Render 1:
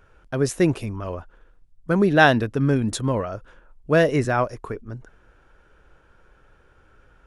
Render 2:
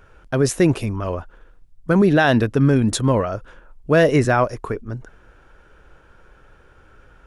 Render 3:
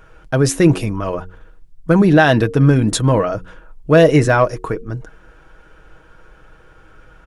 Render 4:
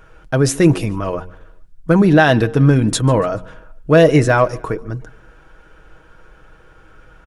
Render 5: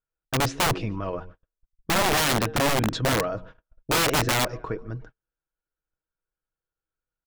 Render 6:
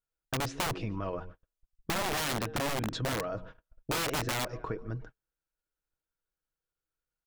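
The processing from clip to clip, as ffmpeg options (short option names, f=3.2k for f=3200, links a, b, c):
-af "alimiter=limit=-12.5dB:level=0:latency=1:release=16,volume=5.5dB"
-filter_complex "[0:a]aecho=1:1:6.3:0.4,bandreject=f=91.6:t=h:w=4,bandreject=f=183.2:t=h:w=4,bandreject=f=274.8:t=h:w=4,bandreject=f=366.4:t=h:w=4,bandreject=f=458:t=h:w=4,asplit=2[a][b];[b]asoftclip=type=tanh:threshold=-12dB,volume=-9dB[c];[a][c]amix=inputs=2:normalize=0,volume=1dB"
-af "aecho=1:1:143|286|429:0.0631|0.0297|0.0139"
-af "lowpass=f=5.2k:w=0.5412,lowpass=f=5.2k:w=1.3066,agate=range=-39dB:threshold=-33dB:ratio=16:detection=peak,aeval=exprs='(mod(2.66*val(0)+1,2)-1)/2.66':c=same,volume=-8.5dB"
-af "acompressor=threshold=-29dB:ratio=4,volume=-2dB"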